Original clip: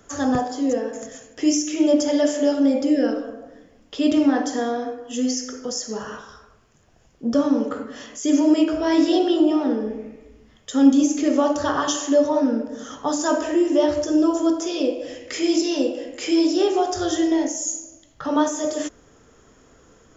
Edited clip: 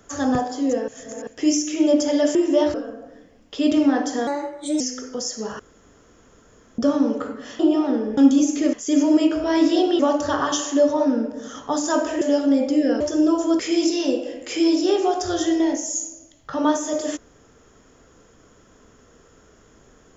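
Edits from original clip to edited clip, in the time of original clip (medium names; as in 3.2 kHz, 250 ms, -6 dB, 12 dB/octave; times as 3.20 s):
0.88–1.27 s: reverse
2.35–3.14 s: swap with 13.57–13.96 s
4.67–5.31 s: speed 120%
6.10–7.29 s: room tone
8.10–9.36 s: move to 11.35 s
9.94–10.79 s: delete
14.55–15.31 s: delete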